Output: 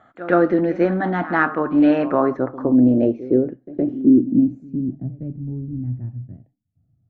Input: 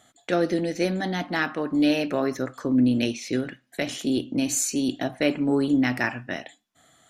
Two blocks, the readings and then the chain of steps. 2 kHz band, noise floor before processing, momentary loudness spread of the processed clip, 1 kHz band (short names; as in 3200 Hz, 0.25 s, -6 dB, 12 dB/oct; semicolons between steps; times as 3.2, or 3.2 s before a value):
+1.5 dB, -67 dBFS, 15 LU, +8.0 dB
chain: low-pass sweep 1300 Hz -> 110 Hz, 2–5.45; dynamic EQ 340 Hz, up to +3 dB, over -38 dBFS, Q 4.5; pre-echo 0.115 s -16 dB; gain +4.5 dB